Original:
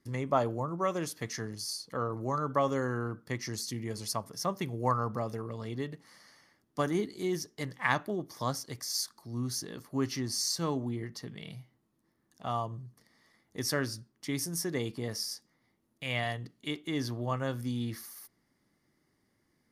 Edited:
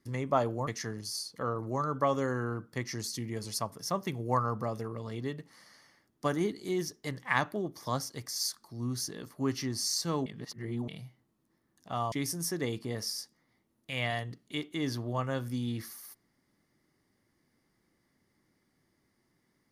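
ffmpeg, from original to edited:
-filter_complex "[0:a]asplit=5[s0][s1][s2][s3][s4];[s0]atrim=end=0.672[s5];[s1]atrim=start=1.208:end=10.802[s6];[s2]atrim=start=10.798:end=11.422,asetpts=PTS-STARTPTS,areverse[s7];[s3]atrim=start=11.418:end=12.662[s8];[s4]atrim=start=14.248[s9];[s5][s6]acrossfade=d=0.004:c1=hsin:c2=hsin[s10];[s10][s7]acrossfade=d=0.004:c1=hsin:c2=hsin[s11];[s11][s8]acrossfade=d=0.004:c1=hsin:c2=hsin[s12];[s12][s9]acrossfade=d=0.004:c1=hsin:c2=hsin"

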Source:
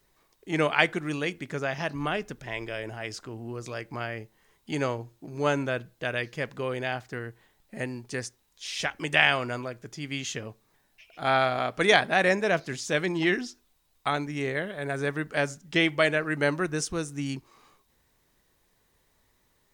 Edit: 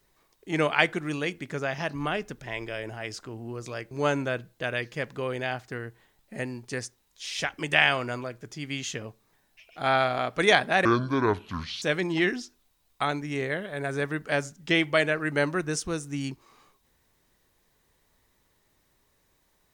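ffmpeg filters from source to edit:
-filter_complex "[0:a]asplit=4[s0][s1][s2][s3];[s0]atrim=end=3.912[s4];[s1]atrim=start=5.318:end=12.264[s5];[s2]atrim=start=12.26:end=12.87,asetpts=PTS-STARTPTS,asetrate=27783,aresample=44100[s6];[s3]atrim=start=12.866[s7];[s4][s5]acrossfade=d=0.004:c1=hsin:c2=hsin[s8];[s8][s6]acrossfade=d=0.004:c1=hsin:c2=hsin[s9];[s9][s7]acrossfade=d=0.004:c1=hsin:c2=hsin"

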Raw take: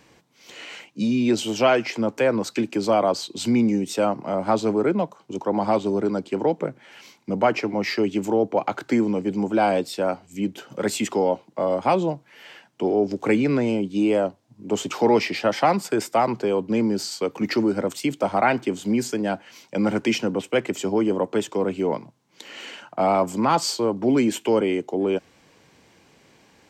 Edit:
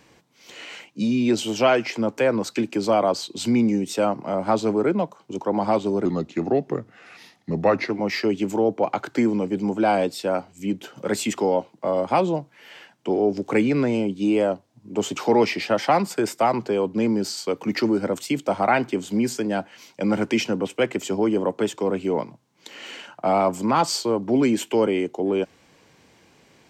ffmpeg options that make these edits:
-filter_complex "[0:a]asplit=3[s0][s1][s2];[s0]atrim=end=6.054[s3];[s1]atrim=start=6.05:end=7.64,asetpts=PTS-STARTPTS,asetrate=37926,aresample=44100[s4];[s2]atrim=start=7.636[s5];[s3][s4]acrossfade=d=0.004:c1=hsin:c2=hsin[s6];[s6][s5]acrossfade=d=0.004:c1=hsin:c2=hsin"

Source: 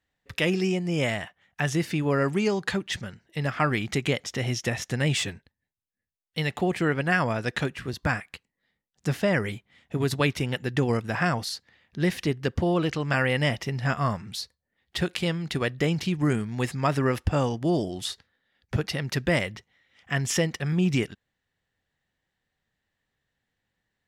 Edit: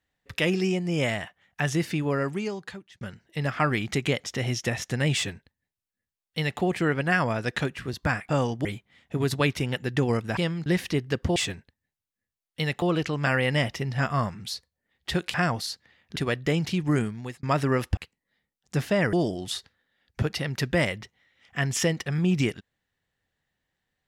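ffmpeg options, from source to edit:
-filter_complex "[0:a]asplit=13[s0][s1][s2][s3][s4][s5][s6][s7][s8][s9][s10][s11][s12];[s0]atrim=end=3.01,asetpts=PTS-STARTPTS,afade=t=out:st=1.88:d=1.13[s13];[s1]atrim=start=3.01:end=8.292,asetpts=PTS-STARTPTS,afade=t=in:d=0.004:c=hsin[s14];[s2]atrim=start=17.308:end=17.672[s15];[s3]atrim=start=9.448:end=11.172[s16];[s4]atrim=start=15.208:end=15.502[s17];[s5]atrim=start=11.988:end=12.692[s18];[s6]atrim=start=5.138:end=6.602[s19];[s7]atrim=start=12.688:end=15.212[s20];[s8]atrim=start=11.168:end=11.992[s21];[s9]atrim=start=15.498:end=16.77,asetpts=PTS-STARTPTS,afade=t=out:st=0.862:d=0.41[s22];[s10]atrim=start=16.77:end=17.312,asetpts=PTS-STARTPTS,afade=t=in:d=0.004:c=hsin[s23];[s11]atrim=start=8.288:end=9.452[s24];[s12]atrim=start=17.668[s25];[s13][s14]concat=n=2:v=0:a=1[s26];[s26][s15]acrossfade=d=0.004:c1=hsin:c2=hsin[s27];[s27][s16]acrossfade=d=0.004:c1=hsin:c2=hsin[s28];[s28][s17]acrossfade=d=0.004:c1=hsin:c2=hsin[s29];[s29][s18]acrossfade=d=0.004:c1=hsin:c2=hsin[s30];[s30][s19]acrossfade=d=0.004:c1=hsin:c2=hsin[s31];[s31][s20]acrossfade=d=0.004:c1=hsin:c2=hsin[s32];[s32][s21]acrossfade=d=0.004:c1=hsin:c2=hsin[s33];[s22][s23]concat=n=2:v=0:a=1[s34];[s33][s34]acrossfade=d=0.004:c1=hsin:c2=hsin[s35];[s35][s24]acrossfade=d=0.004:c1=hsin:c2=hsin[s36];[s36][s25]acrossfade=d=0.004:c1=hsin:c2=hsin"

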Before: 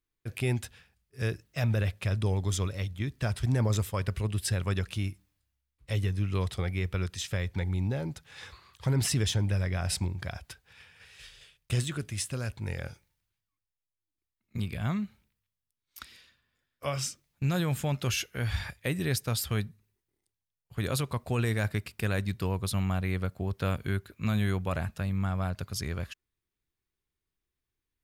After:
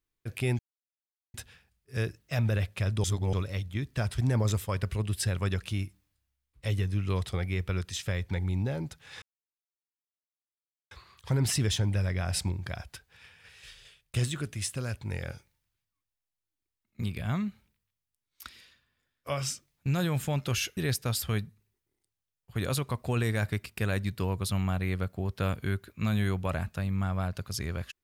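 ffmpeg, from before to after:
-filter_complex "[0:a]asplit=6[s0][s1][s2][s3][s4][s5];[s0]atrim=end=0.59,asetpts=PTS-STARTPTS,afade=t=out:st=0.586:d=0.004:c=hsin,apad=pad_dur=0.75[s6];[s1]atrim=start=0.59:end=2.292,asetpts=PTS-STARTPTS,afade=t=in:d=0.004:c=hsin[s7];[s2]atrim=start=2.288:end=2.582,asetpts=PTS-STARTPTS,areverse[s8];[s3]atrim=start=2.578:end=8.47,asetpts=PTS-STARTPTS,afade=t=out:st=5.888:d=0.004:c=hsin,apad=pad_dur=1.69[s9];[s4]atrim=start=8.47:end=18.332,asetpts=PTS-STARTPTS,afade=t=in:d=0.004:c=hsin[s10];[s5]atrim=start=18.988[s11];[s6][s7]concat=n=2:v=0:a=1[s12];[s12][s8]acrossfade=d=0.004:c1=hsin:c2=hsin[s13];[s9][s10]concat=n=2:v=0:a=1[s14];[s13][s14]acrossfade=d=0.004:c1=hsin:c2=hsin[s15];[s15][s11]acrossfade=d=0.004:c1=hsin:c2=hsin"

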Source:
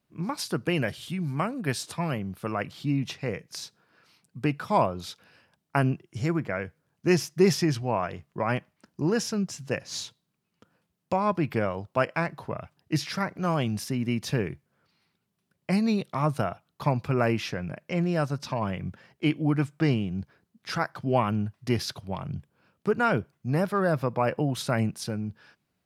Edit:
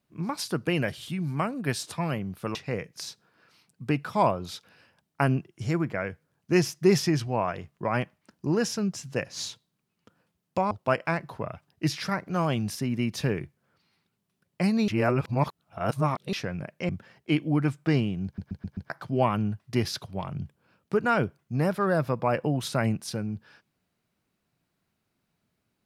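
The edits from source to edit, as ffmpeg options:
-filter_complex "[0:a]asplit=11[s0][s1][s2][s3][s4][s5][s6][s7][s8][s9][s10];[s0]atrim=end=2.552[s11];[s1]atrim=start=3.098:end=11.262[s12];[s2]atrim=start=11.798:end=15.972[s13];[s3]atrim=start=15.968:end=17.422,asetpts=PTS-STARTPTS,areverse[s14];[s4]atrim=start=17.418:end=17.982[s15];[s5]atrim=start=18.828:end=20.322[s16];[s6]atrim=start=20.188:end=20.322[s17];[s7]atrim=start=20.188:end=20.322[s18];[s8]atrim=start=20.188:end=20.322[s19];[s9]atrim=start=20.188:end=20.322[s20];[s10]atrim=start=20.838[s21];[s11][s12]acrossfade=d=0.004:c1=hsin:c2=hsin[s22];[s22][s13]acrossfade=d=0.004:c1=hsin:c2=hsin[s23];[s23][s14]acrossfade=d=0.004:c1=hsin:c2=hsin[s24];[s24][s15]acrossfade=d=0.004:c1=hsin:c2=hsin[s25];[s25][s16]acrossfade=d=0.004:c1=hsin:c2=hsin[s26];[s26][s17]acrossfade=d=0.004:c1=hsin:c2=hsin[s27];[s27][s18]acrossfade=d=0.004:c1=hsin:c2=hsin[s28];[s28][s19]acrossfade=d=0.004:c1=hsin:c2=hsin[s29];[s29][s20]acrossfade=d=0.004:c1=hsin:c2=hsin[s30];[s30][s21]acrossfade=d=0.004:c1=hsin:c2=hsin"

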